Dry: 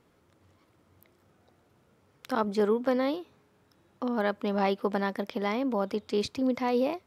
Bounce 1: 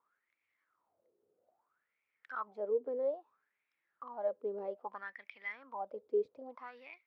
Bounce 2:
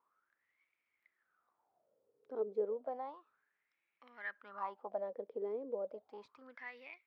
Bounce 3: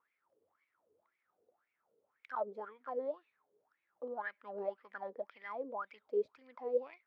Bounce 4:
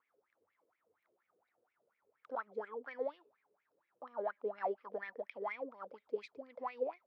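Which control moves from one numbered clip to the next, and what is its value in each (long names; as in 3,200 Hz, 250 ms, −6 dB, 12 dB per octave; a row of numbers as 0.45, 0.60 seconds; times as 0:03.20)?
LFO wah, speed: 0.61, 0.32, 1.9, 4.2 Hertz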